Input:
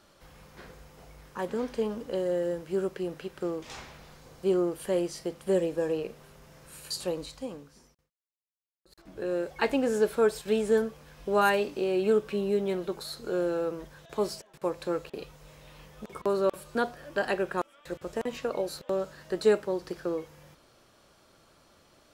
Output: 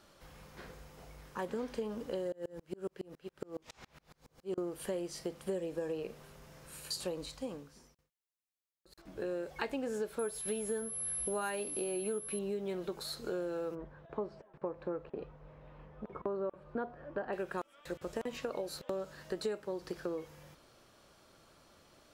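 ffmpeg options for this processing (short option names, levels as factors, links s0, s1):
-filter_complex "[0:a]asettb=1/sr,asplit=3[s0][s1][s2];[s0]atrim=end=2.324[s3];[s1]atrim=start=2.32:end=4.58,asetpts=PTS-STARTPTS,afade=t=in:d=0.004:c=qsin,afade=t=out:st=2.256:d=0.004:c=qsin,aeval=exprs='val(0)*pow(10,-34*if(lt(mod(-7.2*n/s,1),2*abs(-7.2)/1000),1-mod(-7.2*n/s,1)/(2*abs(-7.2)/1000),(mod(-7.2*n/s,1)-2*abs(-7.2)/1000)/(1-2*abs(-7.2)/1000))/20)':c=same[s4];[s2]atrim=start=4.576[s5];[s3][s4]acrossfade=d=0.004:c1=hsin:c2=qsin[s6];[s6][s5]acrossfade=d=0.004:c1=qsin:c2=hsin,asettb=1/sr,asplit=3[s7][s8][s9];[s7]atrim=end=10.194[s10];[s8]atrim=start=10.19:end=12.39,asetpts=PTS-STARTPTS,afade=t=in:d=0.004:c=qsin,afade=t=out:st=2.196:d=0.004:c=qsin,aeval=exprs='val(0)+0.0251*sin(2*PI*11000*n/s)':c=same[s11];[s9]atrim=start=12.386[s12];[s10][s11]acrossfade=d=0.004:c1=hsin:c2=qsin[s13];[s13][s12]acrossfade=d=0.004:c1=qsin:c2=hsin,asplit=3[s14][s15][s16];[s14]afade=t=out:st=13.74:d=0.02[s17];[s15]lowpass=1300,afade=t=in:st=13.74:d=0.02,afade=t=out:st=17.32:d=0.02[s18];[s16]afade=t=in:st=17.32:d=0.02[s19];[s17][s18][s19]amix=inputs=3:normalize=0,acompressor=threshold=0.0251:ratio=6,volume=0.794"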